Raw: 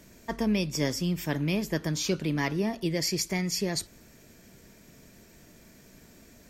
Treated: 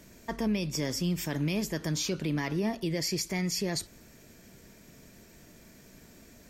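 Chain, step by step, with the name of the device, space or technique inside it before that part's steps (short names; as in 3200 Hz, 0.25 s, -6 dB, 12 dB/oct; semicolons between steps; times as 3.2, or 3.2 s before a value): clipper into limiter (hard clip -16.5 dBFS, distortion -39 dB; limiter -21.5 dBFS, peak gain reduction 5 dB); 1.1–1.93 bell 7300 Hz +4.5 dB 1.3 oct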